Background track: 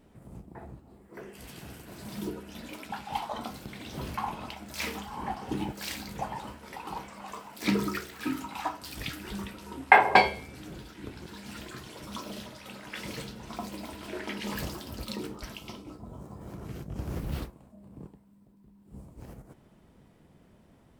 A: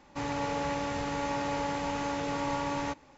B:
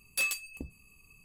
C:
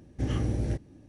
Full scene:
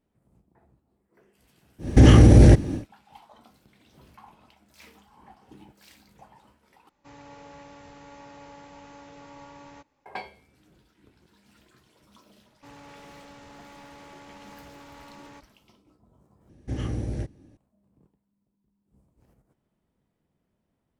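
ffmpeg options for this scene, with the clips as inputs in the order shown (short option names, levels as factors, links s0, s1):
-filter_complex "[3:a]asplit=2[s0][s1];[1:a]asplit=2[s2][s3];[0:a]volume=0.133[s4];[s0]alimiter=level_in=21.1:limit=0.891:release=50:level=0:latency=1[s5];[s3]aeval=exprs='0.0355*(abs(mod(val(0)/0.0355+3,4)-2)-1)':c=same[s6];[s4]asplit=3[s7][s8][s9];[s7]atrim=end=6.894[s10];[s2]atrim=end=3.17,asetpts=PTS-STARTPTS,volume=0.178[s11];[s8]atrim=start=10.056:end=16.494[s12];[s1]atrim=end=1.08,asetpts=PTS-STARTPTS,volume=0.841[s13];[s9]atrim=start=17.566[s14];[s5]atrim=end=1.08,asetpts=PTS-STARTPTS,volume=0.708,afade=t=in:d=0.1,afade=t=out:st=0.98:d=0.1,adelay=1780[s15];[s6]atrim=end=3.17,asetpts=PTS-STARTPTS,volume=0.211,afade=t=in:d=0.004:c=hsin,afade=t=out:st=3.166:d=0.004:c=hsin,adelay=12470[s16];[s10][s11]acrossfade=d=0.004:c1=hsin:c2=hsin[s17];[s17][s12]acrossfade=d=0.004:c1=hsin:c2=hsin[s18];[s18][s13]acrossfade=d=0.004:c1=hsin:c2=hsin[s19];[s19][s14]acrossfade=d=0.004:c1=hsin:c2=hsin[s20];[s20][s15][s16]amix=inputs=3:normalize=0"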